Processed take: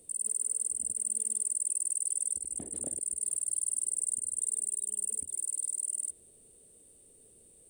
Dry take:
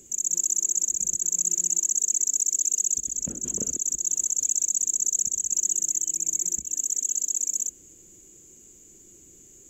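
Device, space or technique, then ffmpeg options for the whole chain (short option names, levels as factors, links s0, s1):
nightcore: -af "asetrate=55566,aresample=44100,volume=0.422"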